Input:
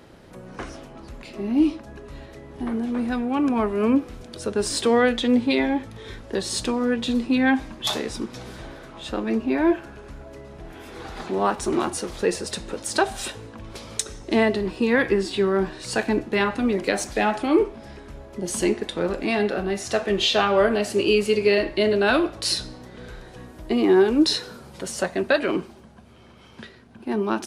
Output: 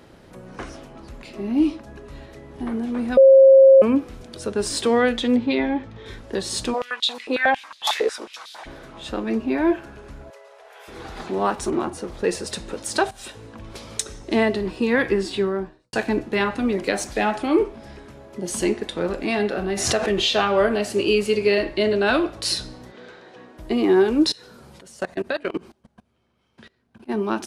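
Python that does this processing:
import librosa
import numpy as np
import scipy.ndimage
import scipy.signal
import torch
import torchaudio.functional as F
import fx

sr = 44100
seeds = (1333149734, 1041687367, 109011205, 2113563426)

y = fx.air_absorb(x, sr, metres=130.0, at=(5.36, 6.06))
y = fx.filter_held_highpass(y, sr, hz=11.0, low_hz=450.0, high_hz=3800.0, at=(6.73, 8.65), fade=0.02)
y = fx.ellip_highpass(y, sr, hz=460.0, order=4, stop_db=40, at=(10.3, 10.88))
y = fx.high_shelf(y, sr, hz=2100.0, db=-10.5, at=(11.7, 12.24))
y = fx.studio_fade_out(y, sr, start_s=15.31, length_s=0.62)
y = fx.highpass(y, sr, hz=100.0, slope=12, at=(18.05, 18.51))
y = fx.pre_swell(y, sr, db_per_s=48.0, at=(19.6, 20.2), fade=0.02)
y = fx.lowpass(y, sr, hz=10000.0, slope=24, at=(21.74, 22.28))
y = fx.bandpass_edges(y, sr, low_hz=270.0, high_hz=fx.line((22.91, 6000.0), (23.57, 3800.0)), at=(22.91, 23.57), fade=0.02)
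y = fx.level_steps(y, sr, step_db=23, at=(24.3, 27.08), fade=0.02)
y = fx.edit(y, sr, fx.bleep(start_s=3.17, length_s=0.65, hz=537.0, db=-6.5),
    fx.fade_in_from(start_s=13.11, length_s=0.42, floor_db=-14.5), tone=tone)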